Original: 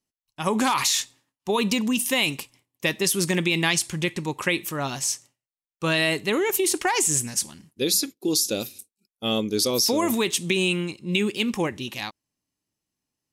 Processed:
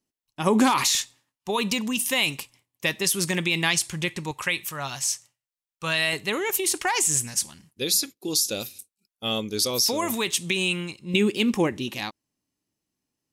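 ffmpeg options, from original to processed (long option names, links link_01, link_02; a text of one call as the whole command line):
ffmpeg -i in.wav -af "asetnsamples=nb_out_samples=441:pad=0,asendcmd='0.95 equalizer g -5;4.31 equalizer g -13;6.13 equalizer g -6.5;11.14 equalizer g 4',equalizer=frequency=300:width_type=o:width=1.7:gain=5.5" out.wav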